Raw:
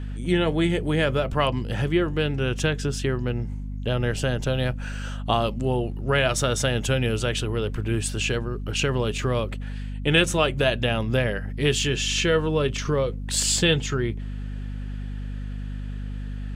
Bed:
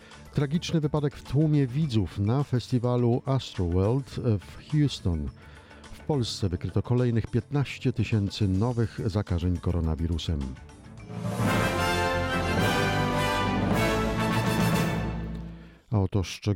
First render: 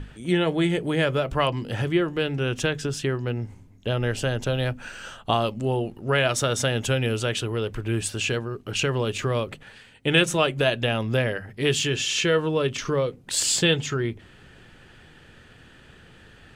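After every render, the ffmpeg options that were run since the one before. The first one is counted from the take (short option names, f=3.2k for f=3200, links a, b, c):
-af "bandreject=f=50:t=h:w=6,bandreject=f=100:t=h:w=6,bandreject=f=150:t=h:w=6,bandreject=f=200:t=h:w=6,bandreject=f=250:t=h:w=6"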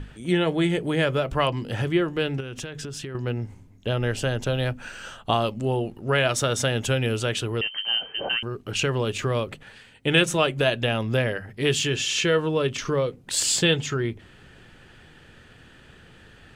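-filter_complex "[0:a]asettb=1/sr,asplit=3[a][b][c];[a]atrim=end=2.404[d];[b]atrim=start=2.4:end=3.15,asetpts=PTS-STARTPTS,afade=t=in:d=0.004:c=qsin,afade=t=out:st=0.746:d=0.004:c=qsin,acompressor=threshold=-30dB:ratio=12:attack=3.2:release=140:knee=1:detection=peak[e];[c]atrim=start=3.146[f];[d][e]acrossfade=d=0.004:c1=hsin:c2=qsin[g];[g][f]acrossfade=d=0.004:c1=qsin:c2=hsin,asettb=1/sr,asplit=3[h][i][j];[h]atrim=end=7.614[k];[i]atrim=start=7.61:end=8.43,asetpts=PTS-STARTPTS,afade=t=in:d=0.004:c=qsin,afade=t=out:st=0.816:d=0.004:c=qsin,lowpass=f=2.7k:t=q:w=0.5098,lowpass=f=2.7k:t=q:w=0.6013,lowpass=f=2.7k:t=q:w=0.9,lowpass=f=2.7k:t=q:w=2.563,afreqshift=-3200[l];[j]atrim=start=8.426[m];[k][l]acrossfade=d=0.004:c1=hsin:c2=qsin[n];[n][m]acrossfade=d=0.004:c1=qsin:c2=hsin"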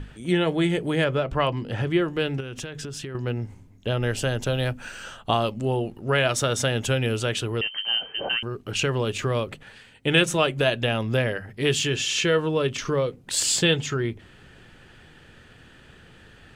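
-filter_complex "[0:a]asettb=1/sr,asplit=3[a][b][c];[a]atrim=end=1.044[d];[b]atrim=start=1.04:end=1.91,asetpts=PTS-STARTPTS,afade=t=in:d=0.004:c=qsin,afade=t=out:st=0.866:d=0.004:c=qsin,lowpass=f=3.5k:p=1[e];[c]atrim=start=1.906[f];[d][e]acrossfade=d=0.004:c1=hsin:c2=qsin[g];[g][f]acrossfade=d=0.004:c1=qsin:c2=hsin,asettb=1/sr,asplit=3[h][i][j];[h]atrim=end=4.024[k];[i]atrim=start=4.02:end=5.04,asetpts=PTS-STARTPTS,afade=t=in:d=0.004:c=qsin,afade=t=out:st=1.016:d=0.004:c=qsin,highshelf=f=6.7k:g=5[l];[j]atrim=start=5.036[m];[k][l]acrossfade=d=0.004:c1=hsin:c2=qsin[n];[n][m]acrossfade=d=0.004:c1=qsin:c2=hsin"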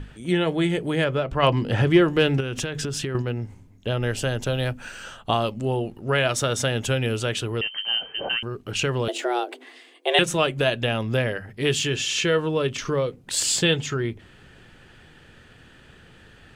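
-filter_complex "[0:a]asplit=3[a][b][c];[a]afade=t=out:st=1.42:d=0.02[d];[b]acontrast=60,afade=t=in:st=1.42:d=0.02,afade=t=out:st=3.21:d=0.02[e];[c]afade=t=in:st=3.21:d=0.02[f];[d][e][f]amix=inputs=3:normalize=0,asettb=1/sr,asplit=3[g][h][i];[g]atrim=end=9.084[j];[h]atrim=start=9.08:end=10.19,asetpts=PTS-STARTPTS,afade=t=in:d=0.004:c=qsin,afade=t=out:st=1.106:d=0.004:c=qsin,afreqshift=240[k];[i]atrim=start=10.186[l];[j][k]acrossfade=d=0.004:c1=hsin:c2=qsin[m];[m][l]acrossfade=d=0.004:c1=qsin:c2=hsin"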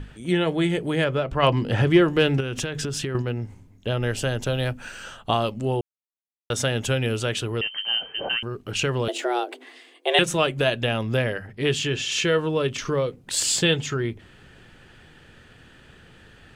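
-filter_complex "[0:a]asettb=1/sr,asplit=3[a][b][c];[a]atrim=end=11.474[d];[b]atrim=start=11.47:end=12.12,asetpts=PTS-STARTPTS,afade=t=in:d=0.004:c=qsin,afade=t=out:st=0.646:d=0.004:c=qsin,highshelf=f=6.8k:g=-8.5[e];[c]atrim=start=12.116[f];[d][e]acrossfade=d=0.004:c1=hsin:c2=qsin[g];[g][f]acrossfade=d=0.004:c1=qsin:c2=hsin,asplit=3[h][i][j];[h]atrim=end=5.81,asetpts=PTS-STARTPTS,afade=t=out:st=5.806:d=0.004:c=hsin[k];[i]atrim=start=5.81:end=6.5,asetpts=PTS-STARTPTS,volume=0[l];[j]atrim=start=6.5,asetpts=PTS-STARTPTS,afade=t=in:d=0.004:c=hsin[m];[k][l][m]concat=n=3:v=0:a=1"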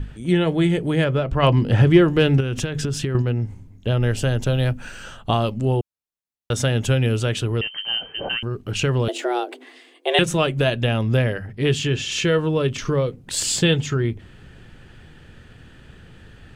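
-af "lowshelf=f=240:g=9"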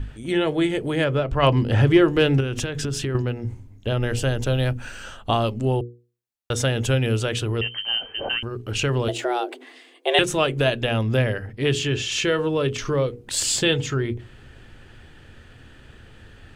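-af "equalizer=f=170:w=5.7:g=-13,bandreject=f=60:t=h:w=6,bandreject=f=120:t=h:w=6,bandreject=f=180:t=h:w=6,bandreject=f=240:t=h:w=6,bandreject=f=300:t=h:w=6,bandreject=f=360:t=h:w=6,bandreject=f=420:t=h:w=6,bandreject=f=480:t=h:w=6"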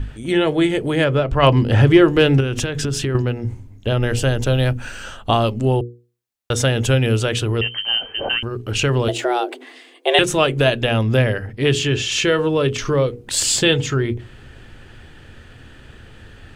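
-af "volume=4.5dB,alimiter=limit=-1dB:level=0:latency=1"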